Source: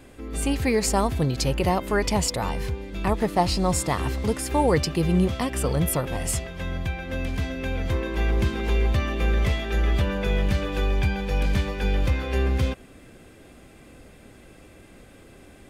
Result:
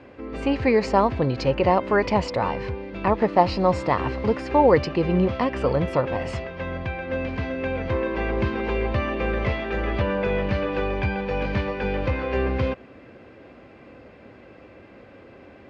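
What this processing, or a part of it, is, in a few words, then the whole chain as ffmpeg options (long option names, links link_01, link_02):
guitar cabinet: -af "highpass=94,equalizer=frequency=160:width_type=q:width=4:gain=-6,equalizer=frequency=540:width_type=q:width=4:gain=5,equalizer=frequency=990:width_type=q:width=4:gain=4,equalizer=frequency=3500:width_type=q:width=4:gain=-9,lowpass=frequency=4000:width=0.5412,lowpass=frequency=4000:width=1.3066,volume=2.5dB"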